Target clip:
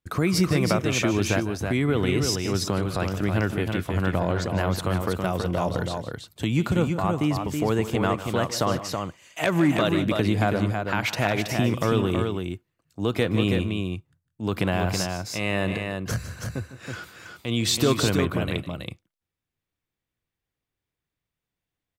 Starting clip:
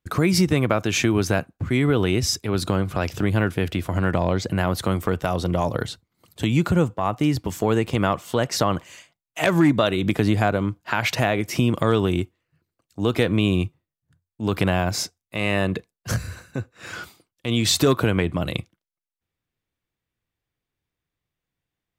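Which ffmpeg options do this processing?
-af "aecho=1:1:153|176|325:0.2|0.106|0.562,volume=-3.5dB"

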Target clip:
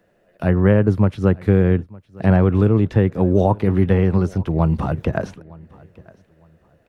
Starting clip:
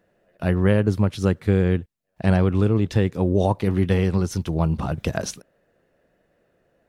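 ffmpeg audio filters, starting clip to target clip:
-filter_complex "[0:a]acrossover=split=120|2300[a][b][c];[c]acompressor=threshold=-54dB:ratio=10[d];[a][b][d]amix=inputs=3:normalize=0,aecho=1:1:910|1820:0.0668|0.0174,volume=4dB"

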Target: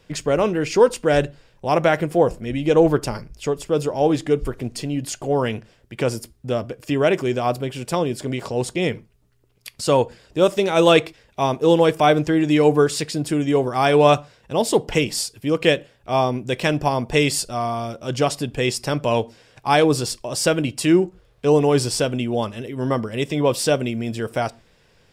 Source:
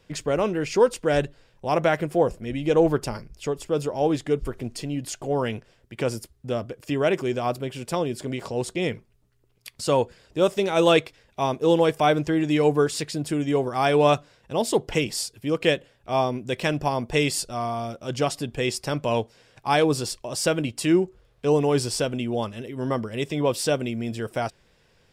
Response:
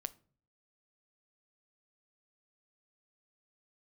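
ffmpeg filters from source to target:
-filter_complex "[0:a]asplit=2[a][b];[1:a]atrim=start_sample=2205,atrim=end_sample=6615[c];[b][c]afir=irnorm=-1:irlink=0,volume=1.5dB[d];[a][d]amix=inputs=2:normalize=0,volume=-1.5dB"

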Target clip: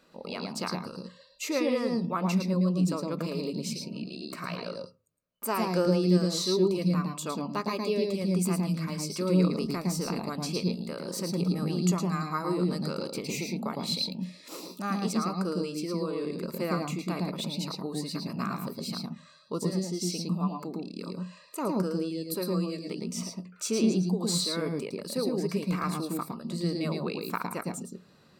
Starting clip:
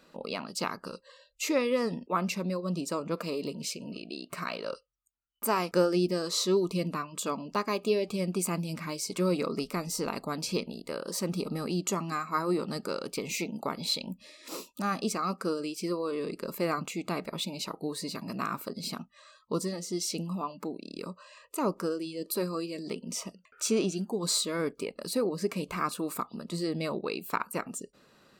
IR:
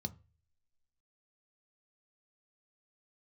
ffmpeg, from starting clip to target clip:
-filter_complex "[0:a]asplit=2[a][b];[1:a]atrim=start_sample=2205,adelay=110[c];[b][c]afir=irnorm=-1:irlink=0,volume=-2.5dB[d];[a][d]amix=inputs=2:normalize=0,volume=-2.5dB"

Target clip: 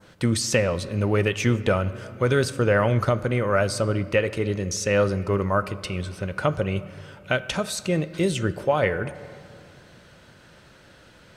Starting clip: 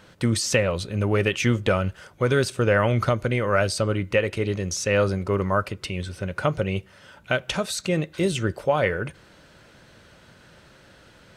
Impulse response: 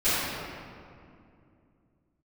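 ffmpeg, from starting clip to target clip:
-filter_complex "[0:a]asplit=2[a][b];[1:a]atrim=start_sample=2205[c];[b][c]afir=irnorm=-1:irlink=0,volume=-30dB[d];[a][d]amix=inputs=2:normalize=0,adynamicequalizer=threshold=0.0112:dfrequency=3100:dqfactor=0.74:tfrequency=3100:tqfactor=0.74:attack=5:release=100:ratio=0.375:range=2:mode=cutabove:tftype=bell"

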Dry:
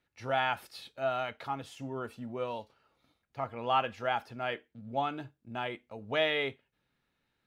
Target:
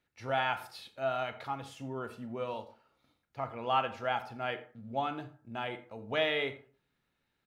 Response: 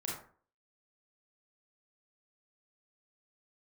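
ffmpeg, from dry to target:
-filter_complex "[0:a]aecho=1:1:87:0.0891,asplit=2[a][b];[1:a]atrim=start_sample=2205[c];[b][c]afir=irnorm=-1:irlink=0,volume=-9.5dB[d];[a][d]amix=inputs=2:normalize=0,volume=-3dB"

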